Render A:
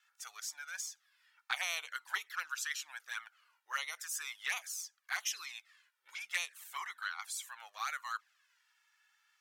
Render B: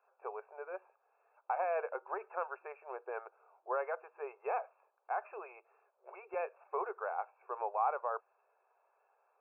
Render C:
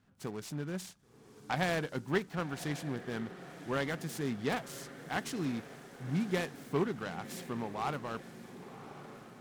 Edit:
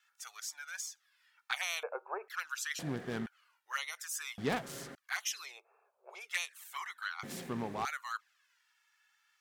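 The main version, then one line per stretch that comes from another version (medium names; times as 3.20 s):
A
1.83–2.28 s: from B
2.79–3.26 s: from C
4.38–4.95 s: from C
5.53–6.20 s: from B, crossfade 0.24 s
7.23–7.85 s: from C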